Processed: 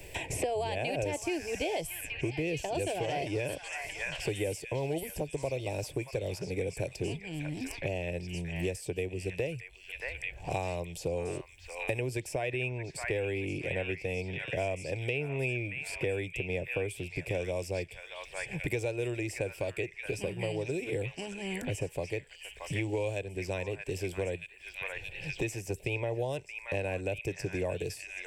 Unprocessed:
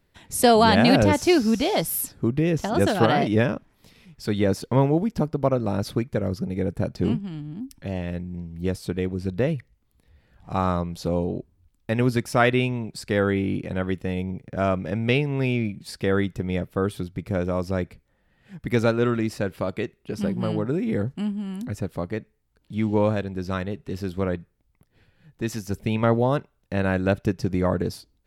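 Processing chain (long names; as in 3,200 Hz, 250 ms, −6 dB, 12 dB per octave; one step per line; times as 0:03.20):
thirty-one-band graphic EQ 2,500 Hz +12 dB, 4,000 Hz −9 dB, 8,000 Hz +10 dB
brickwall limiter −11.5 dBFS, peak gain reduction 8 dB
phaser with its sweep stopped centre 530 Hz, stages 4
on a send: echo through a band-pass that steps 626 ms, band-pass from 1,600 Hz, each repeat 0.7 octaves, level −4 dB
on the sum: multiband upward and downward compressor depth 100%
level −6.5 dB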